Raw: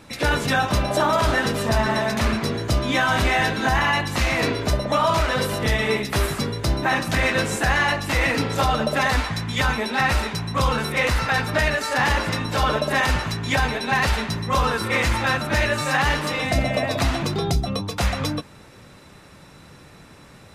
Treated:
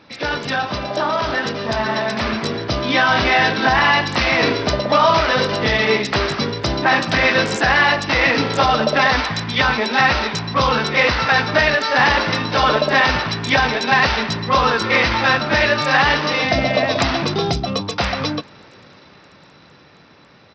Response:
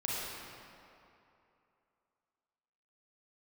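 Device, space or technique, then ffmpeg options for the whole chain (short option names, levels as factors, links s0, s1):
Bluetooth headset: -af "highpass=f=210:p=1,dynaudnorm=f=380:g=13:m=2.51,aresample=16000,aresample=44100" -ar 44100 -c:a sbc -b:a 64k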